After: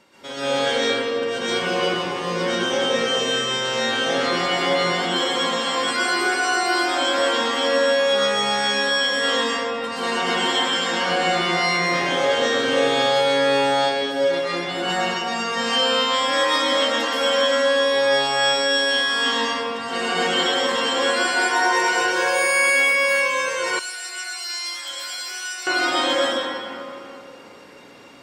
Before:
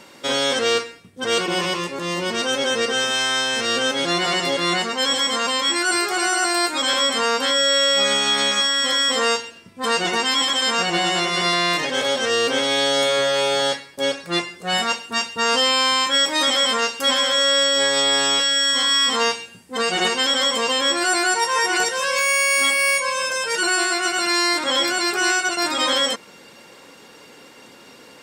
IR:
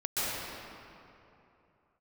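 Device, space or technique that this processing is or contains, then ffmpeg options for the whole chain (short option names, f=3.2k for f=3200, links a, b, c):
swimming-pool hall: -filter_complex "[1:a]atrim=start_sample=2205[a];[0:a][a]afir=irnorm=-1:irlink=0,highshelf=f=5.1k:g=-5.5,asettb=1/sr,asplit=3[b][c][d];[b]atrim=end=23.794[e];[c]atrim=start=23.79:end=25.67,asetpts=PTS-STARTPTS,afade=t=in:d=0.004:c=qsin,afade=t=out:st=1.876:d=0.004:c=qsin,aderivative[f];[d]atrim=start=25.666[g];[e][f]acrossfade=d=0.004:c1=hsin:c2=qsin[h];[h][g]acrossfade=d=0.004:c1=qsin:c2=hsin,volume=-8.5dB"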